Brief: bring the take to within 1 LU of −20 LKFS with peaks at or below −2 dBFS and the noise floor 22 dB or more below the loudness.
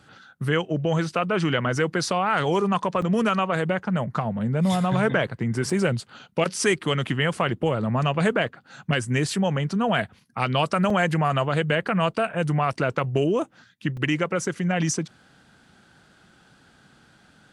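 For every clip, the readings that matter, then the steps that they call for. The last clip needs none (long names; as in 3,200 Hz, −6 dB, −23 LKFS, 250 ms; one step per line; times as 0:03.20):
number of dropouts 4; longest dropout 3.6 ms; integrated loudness −24.0 LKFS; sample peak −6.5 dBFS; target loudness −20.0 LKFS
→ repair the gap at 0:03.02/0:05.70/0:10.90/0:13.97, 3.6 ms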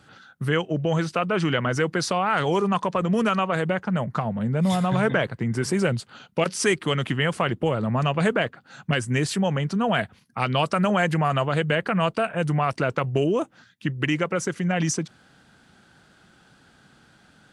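number of dropouts 0; integrated loudness −24.0 LKFS; sample peak −6.5 dBFS; target loudness −20.0 LKFS
→ level +4 dB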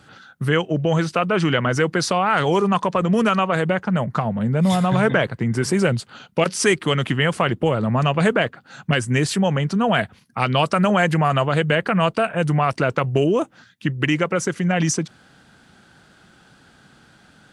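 integrated loudness −20.0 LKFS; sample peak −2.5 dBFS; background noise floor −53 dBFS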